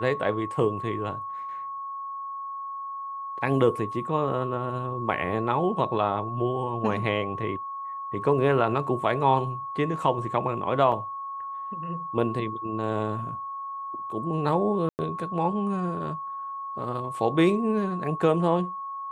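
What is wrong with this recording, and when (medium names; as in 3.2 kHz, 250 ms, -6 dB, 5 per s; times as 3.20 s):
whine 1.1 kHz -32 dBFS
10.92 s: dropout 4.8 ms
14.89–14.99 s: dropout 99 ms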